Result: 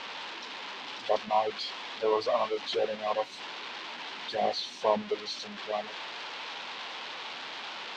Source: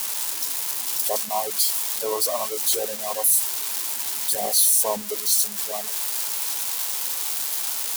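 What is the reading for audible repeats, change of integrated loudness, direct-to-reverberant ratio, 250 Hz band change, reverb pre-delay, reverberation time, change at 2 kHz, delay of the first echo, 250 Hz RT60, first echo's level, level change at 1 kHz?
no echo audible, −11.5 dB, no reverb audible, 0.0 dB, no reverb audible, no reverb audible, 0.0 dB, no echo audible, no reverb audible, no echo audible, 0.0 dB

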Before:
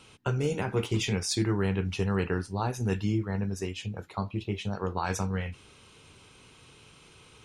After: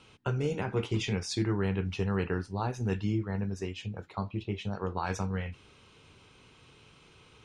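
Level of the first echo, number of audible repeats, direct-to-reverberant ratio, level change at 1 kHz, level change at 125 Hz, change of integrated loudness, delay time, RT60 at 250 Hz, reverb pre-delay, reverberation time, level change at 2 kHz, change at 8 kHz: no echo audible, no echo audible, no reverb audible, −2.5 dB, −2.0 dB, −2.5 dB, no echo audible, no reverb audible, no reverb audible, no reverb audible, −2.5 dB, −7.5 dB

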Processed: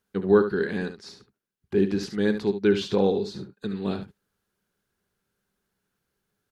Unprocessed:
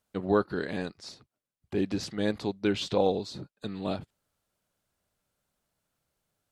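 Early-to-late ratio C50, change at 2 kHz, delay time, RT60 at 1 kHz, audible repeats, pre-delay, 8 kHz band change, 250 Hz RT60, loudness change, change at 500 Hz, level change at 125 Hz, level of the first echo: no reverb audible, +5.0 dB, 71 ms, no reverb audible, 1, no reverb audible, can't be measured, no reverb audible, +5.5 dB, +6.5 dB, +5.0 dB, −10.0 dB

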